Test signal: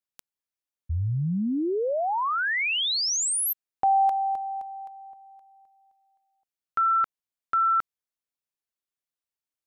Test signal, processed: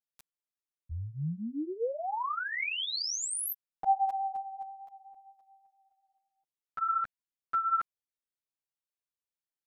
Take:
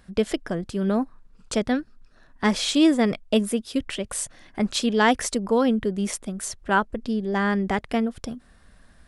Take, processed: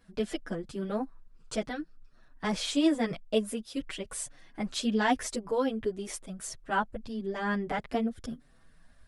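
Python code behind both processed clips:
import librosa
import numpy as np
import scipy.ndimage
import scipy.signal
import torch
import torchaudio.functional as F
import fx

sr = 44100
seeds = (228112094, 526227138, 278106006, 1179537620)

y = fx.chorus_voices(x, sr, voices=4, hz=0.48, base_ms=10, depth_ms=4.0, mix_pct=60)
y = F.gain(torch.from_numpy(y), -5.0).numpy()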